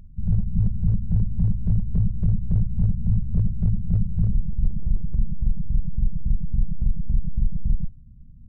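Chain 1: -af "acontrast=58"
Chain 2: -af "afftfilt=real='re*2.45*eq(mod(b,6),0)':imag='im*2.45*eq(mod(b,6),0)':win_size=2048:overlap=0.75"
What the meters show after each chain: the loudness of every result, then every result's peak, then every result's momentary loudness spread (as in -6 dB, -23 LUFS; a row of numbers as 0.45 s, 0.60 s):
-20.0 LUFS, -34.0 LUFS; -6.0 dBFS, -12.5 dBFS; 6 LU, 6 LU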